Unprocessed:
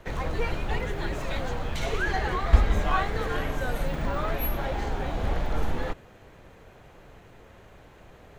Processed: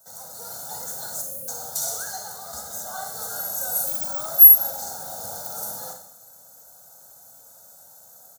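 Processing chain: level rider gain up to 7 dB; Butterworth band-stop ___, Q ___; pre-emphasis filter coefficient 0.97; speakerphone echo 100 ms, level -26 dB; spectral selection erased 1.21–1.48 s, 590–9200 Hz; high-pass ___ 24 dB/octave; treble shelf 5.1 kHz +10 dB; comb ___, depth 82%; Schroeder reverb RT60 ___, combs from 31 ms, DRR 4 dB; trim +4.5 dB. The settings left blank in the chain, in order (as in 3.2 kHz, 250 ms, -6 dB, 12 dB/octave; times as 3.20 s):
2.5 kHz, 0.57, 110 Hz, 1.4 ms, 0.68 s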